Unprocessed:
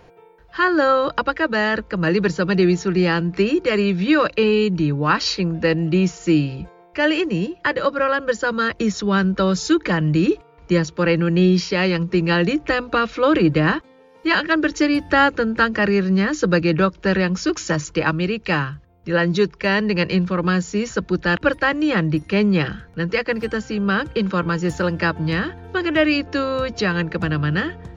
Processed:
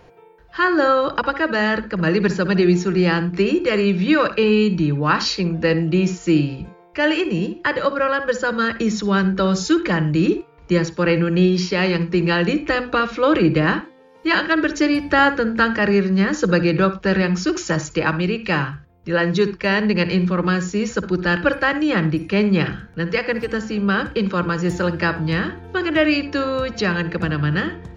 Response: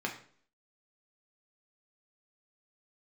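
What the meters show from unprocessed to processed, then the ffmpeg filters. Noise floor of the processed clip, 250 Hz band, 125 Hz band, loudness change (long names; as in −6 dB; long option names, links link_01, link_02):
−47 dBFS, +0.5 dB, +0.5 dB, +0.5 dB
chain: -filter_complex "[0:a]asplit=2[link_01][link_02];[1:a]atrim=start_sample=2205,atrim=end_sample=3087,adelay=57[link_03];[link_02][link_03]afir=irnorm=-1:irlink=0,volume=-16dB[link_04];[link_01][link_04]amix=inputs=2:normalize=0"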